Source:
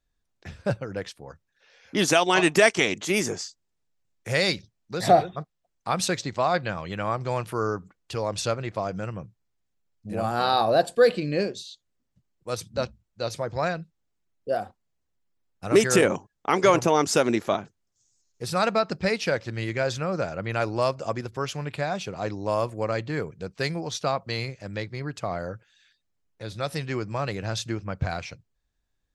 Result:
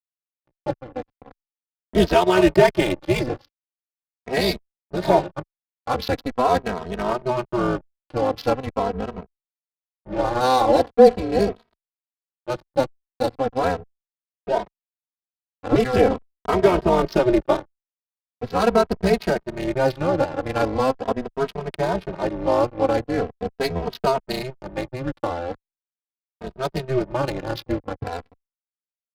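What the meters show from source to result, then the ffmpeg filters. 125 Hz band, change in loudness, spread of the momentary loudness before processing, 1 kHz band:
+1.5 dB, +3.5 dB, 16 LU, +3.5 dB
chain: -filter_complex "[0:a]highpass=220,equalizer=frequency=2200:width_type=o:width=2.5:gain=-11.5,dynaudnorm=framelen=190:gausssize=13:maxgain=7.5dB,asplit=2[link_01][link_02];[link_02]alimiter=limit=-12.5dB:level=0:latency=1:release=116,volume=-1dB[link_03];[link_01][link_03]amix=inputs=2:normalize=0,tremolo=f=260:d=0.788,aresample=11025,aeval=exprs='sgn(val(0))*max(abs(val(0))-0.0178,0)':channel_layout=same,aresample=44100,adynamicsmooth=sensitivity=6:basefreq=760,asoftclip=type=tanh:threshold=-5dB,asplit=2[link_04][link_05];[link_05]adelay=2.8,afreqshift=-0.41[link_06];[link_04][link_06]amix=inputs=2:normalize=1,volume=5dB"

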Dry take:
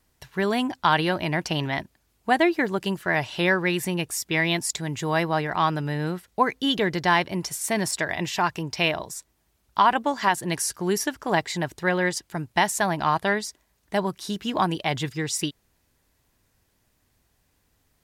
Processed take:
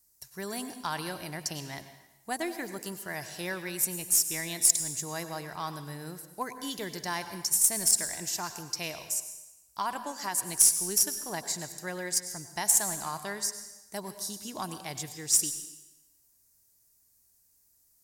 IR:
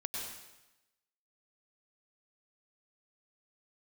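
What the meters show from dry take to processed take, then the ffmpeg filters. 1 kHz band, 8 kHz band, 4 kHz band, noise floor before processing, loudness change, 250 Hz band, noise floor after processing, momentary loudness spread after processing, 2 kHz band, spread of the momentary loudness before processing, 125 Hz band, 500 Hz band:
−13.5 dB, +7.0 dB, −6.5 dB, −69 dBFS, −4.0 dB, −13.5 dB, −67 dBFS, 17 LU, −13.5 dB, 8 LU, −13.5 dB, −13.5 dB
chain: -filter_complex "[0:a]aexciter=amount=6.9:drive=7.4:freq=4800,aeval=exprs='1.78*(cos(1*acos(clip(val(0)/1.78,-1,1)))-cos(1*PI/2))+0.0141*(cos(2*acos(clip(val(0)/1.78,-1,1)))-cos(2*PI/2))+0.355*(cos(3*acos(clip(val(0)/1.78,-1,1)))-cos(3*PI/2))+0.0224*(cos(4*acos(clip(val(0)/1.78,-1,1)))-cos(4*PI/2))+0.0112*(cos(5*acos(clip(val(0)/1.78,-1,1)))-cos(5*PI/2))':channel_layout=same,asplit=2[link_01][link_02];[1:a]atrim=start_sample=2205[link_03];[link_02][link_03]afir=irnorm=-1:irlink=0,volume=-6.5dB[link_04];[link_01][link_04]amix=inputs=2:normalize=0,volume=-9.5dB"

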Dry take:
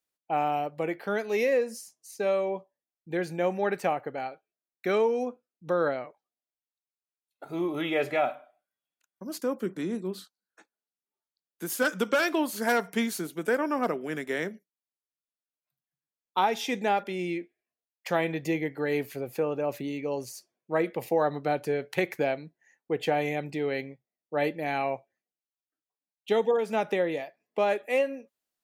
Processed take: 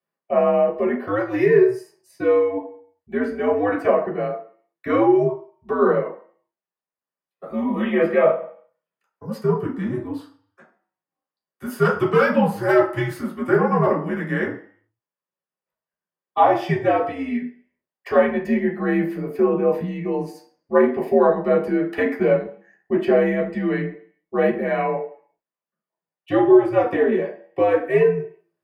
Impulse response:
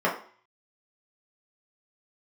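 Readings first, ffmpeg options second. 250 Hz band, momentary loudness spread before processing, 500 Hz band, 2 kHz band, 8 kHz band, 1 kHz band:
+10.5 dB, 11 LU, +9.5 dB, +5.0 dB, can't be measured, +6.5 dB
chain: -filter_complex "[0:a]afreqshift=-100[link_01];[1:a]atrim=start_sample=2205,asetrate=40572,aresample=44100[link_02];[link_01][link_02]afir=irnorm=-1:irlink=0,volume=-8dB"

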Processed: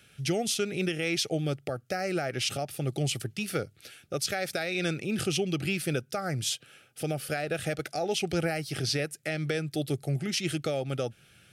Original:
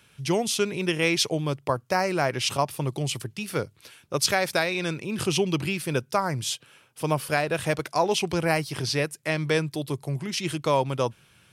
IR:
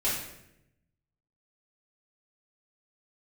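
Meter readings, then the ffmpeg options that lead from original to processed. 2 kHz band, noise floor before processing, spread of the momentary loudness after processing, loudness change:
−5.5 dB, −60 dBFS, 6 LU, −4.5 dB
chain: -af "alimiter=limit=-18dB:level=0:latency=1:release=222,asuperstop=centerf=1000:order=8:qfactor=2.9"

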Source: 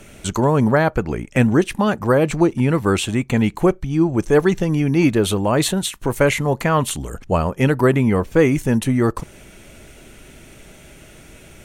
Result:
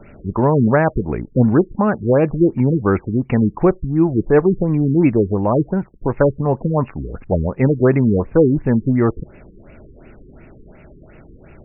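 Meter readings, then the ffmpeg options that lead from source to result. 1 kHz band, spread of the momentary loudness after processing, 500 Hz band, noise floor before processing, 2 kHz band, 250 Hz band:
−1.0 dB, 7 LU, +1.5 dB, −44 dBFS, −5.0 dB, +2.0 dB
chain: -af "aemphasis=mode=reproduction:type=75fm,afftfilt=real='re*lt(b*sr/1024,450*pow(2900/450,0.5+0.5*sin(2*PI*2.8*pts/sr)))':imag='im*lt(b*sr/1024,450*pow(2900/450,0.5+0.5*sin(2*PI*2.8*pts/sr)))':win_size=1024:overlap=0.75,volume=1dB"

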